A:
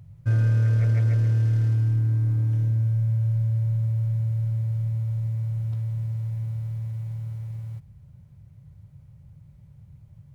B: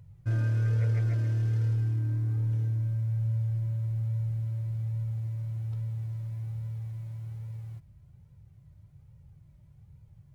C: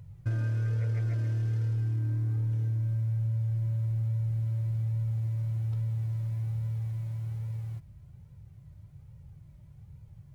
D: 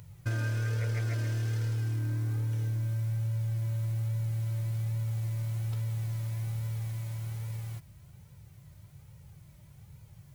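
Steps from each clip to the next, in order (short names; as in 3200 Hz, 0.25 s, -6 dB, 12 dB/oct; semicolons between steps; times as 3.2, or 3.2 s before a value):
flange 1.2 Hz, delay 2 ms, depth 1.3 ms, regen +44%
compressor, threshold -31 dBFS, peak gain reduction 7.5 dB; gain +4 dB
tilt +2.5 dB/oct; gain +6 dB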